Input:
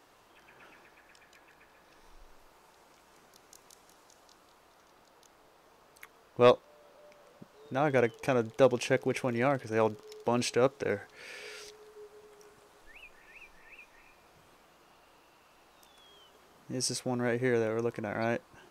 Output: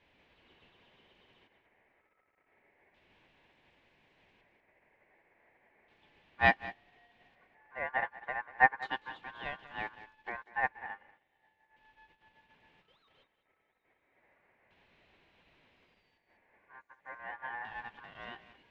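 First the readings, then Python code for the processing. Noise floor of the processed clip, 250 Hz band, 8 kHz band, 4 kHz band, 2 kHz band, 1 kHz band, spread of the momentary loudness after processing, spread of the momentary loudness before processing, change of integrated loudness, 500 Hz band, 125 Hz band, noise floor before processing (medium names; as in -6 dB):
-77 dBFS, -16.5 dB, under -35 dB, -8.5 dB, +4.0 dB, 0.0 dB, 21 LU, 17 LU, -4.5 dB, -16.5 dB, -14.0 dB, -62 dBFS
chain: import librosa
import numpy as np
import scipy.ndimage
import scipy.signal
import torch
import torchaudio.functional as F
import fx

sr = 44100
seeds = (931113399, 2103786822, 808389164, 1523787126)

y = x + 0.5 * 10.0 ** (-29.5 / 20.0) * np.sign(x)
y = fx.low_shelf(y, sr, hz=66.0, db=-8.5)
y = fx.filter_lfo_lowpass(y, sr, shape='square', hz=0.34, low_hz=840.0, high_hz=1900.0, q=1.4)
y = y + 10.0 ** (-7.5 / 20.0) * np.pad(y, (int(193 * sr / 1000.0), 0))[:len(y)]
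y = y * np.sin(2.0 * np.pi * 1300.0 * np.arange(len(y)) / sr)
y = fx.upward_expand(y, sr, threshold_db=-42.0, expansion=2.5)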